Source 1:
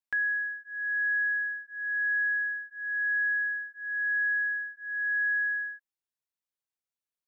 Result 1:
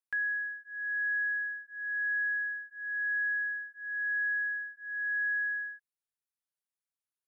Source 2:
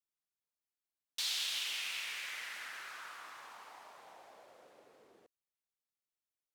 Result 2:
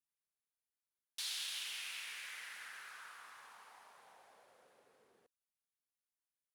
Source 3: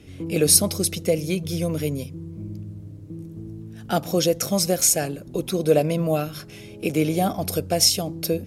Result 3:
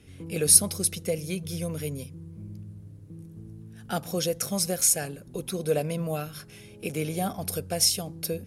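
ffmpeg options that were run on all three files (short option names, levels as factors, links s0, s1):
-af "equalizer=f=315:t=o:w=0.33:g=-7,equalizer=f=630:t=o:w=0.33:g=-4,equalizer=f=1600:t=o:w=0.33:g=3,equalizer=f=10000:t=o:w=0.33:g=8,volume=0.501"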